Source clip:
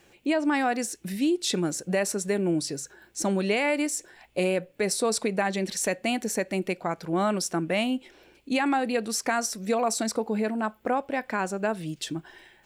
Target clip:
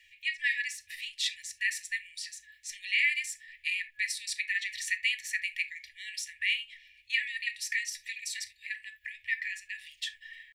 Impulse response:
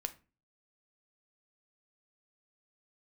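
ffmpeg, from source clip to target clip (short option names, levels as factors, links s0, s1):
-filter_complex "[0:a]acrossover=split=490 3500:gain=0.158 1 0.2[s0][s1][s2];[s0][s1][s2]amix=inputs=3:normalize=0,atempo=1.2[s3];[1:a]atrim=start_sample=2205,atrim=end_sample=3969[s4];[s3][s4]afir=irnorm=-1:irlink=0,afftfilt=real='re*(1-between(b*sr/4096,100,1700))':imag='im*(1-between(b*sr/4096,100,1700))':win_size=4096:overlap=0.75,volume=2"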